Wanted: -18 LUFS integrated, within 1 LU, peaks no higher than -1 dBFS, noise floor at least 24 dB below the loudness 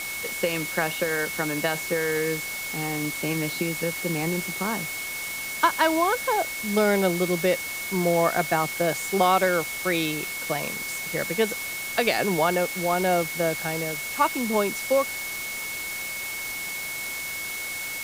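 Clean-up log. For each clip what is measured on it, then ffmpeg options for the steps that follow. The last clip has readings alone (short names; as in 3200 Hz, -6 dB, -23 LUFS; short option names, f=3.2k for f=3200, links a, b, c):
steady tone 2200 Hz; tone level -32 dBFS; noise floor -33 dBFS; noise floor target -50 dBFS; loudness -25.5 LUFS; peak -8.0 dBFS; loudness target -18.0 LUFS
-> -af "bandreject=f=2.2k:w=30"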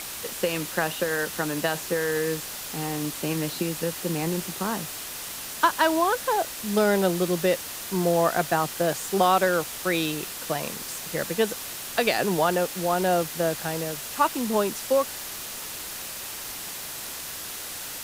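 steady tone none; noise floor -36 dBFS; noise floor target -50 dBFS
-> -af "afftdn=nr=14:nf=-36"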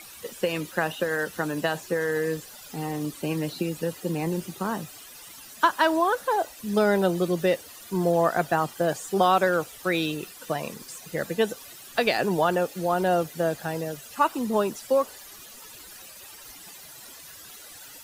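noise floor -46 dBFS; noise floor target -50 dBFS
-> -af "afftdn=nr=6:nf=-46"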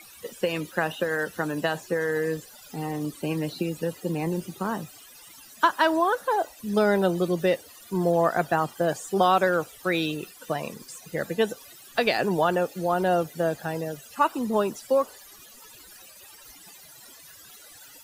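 noise floor -49 dBFS; noise floor target -51 dBFS
-> -af "afftdn=nr=6:nf=-49"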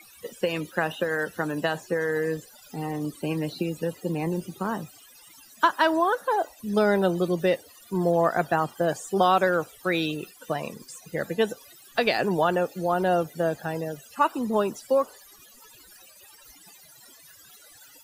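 noise floor -52 dBFS; loudness -26.5 LUFS; peak -8.5 dBFS; loudness target -18.0 LUFS
-> -af "volume=8.5dB,alimiter=limit=-1dB:level=0:latency=1"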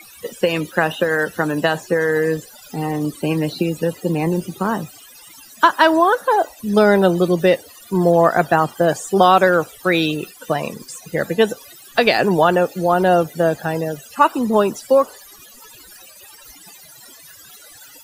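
loudness -18.0 LUFS; peak -1.0 dBFS; noise floor -44 dBFS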